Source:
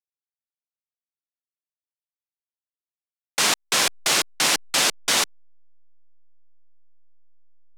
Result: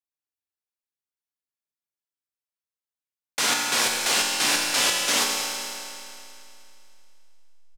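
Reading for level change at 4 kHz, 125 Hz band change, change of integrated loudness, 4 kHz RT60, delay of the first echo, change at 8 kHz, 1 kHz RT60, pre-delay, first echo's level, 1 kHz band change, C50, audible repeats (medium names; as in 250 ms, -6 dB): -1.0 dB, -3.5 dB, -1.0 dB, 2.7 s, 215 ms, -1.0 dB, 2.7 s, 4 ms, -12.0 dB, -0.5 dB, 0.5 dB, 1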